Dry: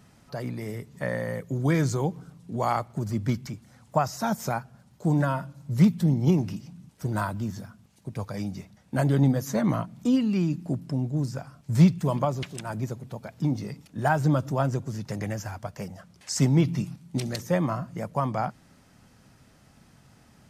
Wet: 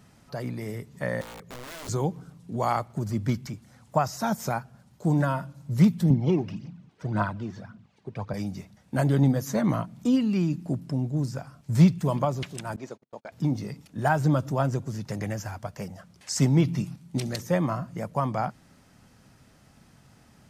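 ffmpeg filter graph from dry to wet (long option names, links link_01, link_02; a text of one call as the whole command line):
ffmpeg -i in.wav -filter_complex "[0:a]asettb=1/sr,asplit=3[link_01][link_02][link_03];[link_01]atrim=end=1.214[link_04];[link_02]atrim=start=1.21:end=1.89,asetpts=PTS-STARTPTS,afade=type=in:duration=0.004:curve=qsin,afade=type=out:start_time=0.676:duration=0.004:curve=qsin,highshelf=frequency=8400:gain=-9.5,acompressor=threshold=-41dB:ratio=2.5:attack=3.2:release=140:knee=1:detection=peak,aeval=exprs='(mod(59.6*val(0)+1,2)-1)/59.6':channel_layout=same[link_05];[link_03]atrim=start=1.886[link_06];[link_04][link_05]acrossfade=duration=0.004:curve1=hsin:curve2=qsin[link_07];[link_07][link_06]acrossfade=duration=0.004:curve1=qsin:curve2=hsin,asettb=1/sr,asplit=3[link_08][link_09][link_10];[link_08]atrim=end=6.104[link_11];[link_09]atrim=start=6.1:end=8.34,asetpts=PTS-STARTPTS,afade=type=in:duration=0.004:curve=qsin,afade=type=out:start_time=2.236:duration=0.004:curve=qsin,highpass=120,lowpass=3400,aphaser=in_gain=1:out_gain=1:delay=2.9:decay=0.54:speed=1.8:type=triangular[link_12];[link_10]atrim=start=8.336[link_13];[link_11][link_12]acrossfade=duration=0.004:curve1=hsin:curve2=qsin[link_14];[link_14][link_13]acrossfade=duration=0.004:curve1=qsin:curve2=hsin,asettb=1/sr,asplit=3[link_15][link_16][link_17];[link_15]atrim=end=12.764[link_18];[link_16]atrim=start=12.76:end=13.32,asetpts=PTS-STARTPTS,afade=type=in:duration=0.004:curve=qsin,afade=type=out:start_time=0.556:duration=0.004:curve=qsin,highpass=350,lowpass=6200,agate=range=-35dB:threshold=-46dB:ratio=16:release=100:detection=peak[link_19];[link_17]atrim=start=13.316[link_20];[link_18][link_19]acrossfade=duration=0.004:curve1=hsin:curve2=qsin[link_21];[link_21][link_20]acrossfade=duration=0.004:curve1=qsin:curve2=hsin" out.wav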